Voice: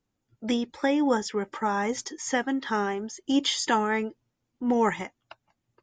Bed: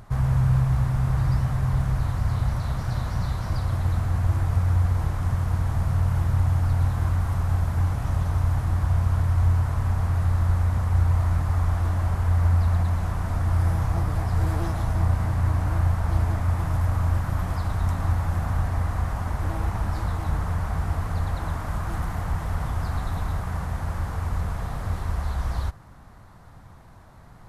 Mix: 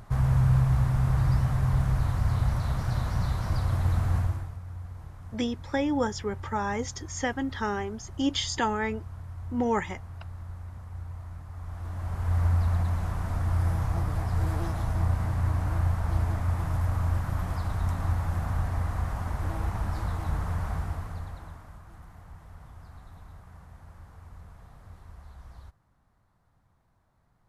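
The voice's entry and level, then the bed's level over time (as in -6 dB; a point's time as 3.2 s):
4.90 s, -3.0 dB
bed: 4.18 s -1.5 dB
4.58 s -18.5 dB
11.51 s -18.5 dB
12.37 s -4 dB
20.72 s -4 dB
21.84 s -20.5 dB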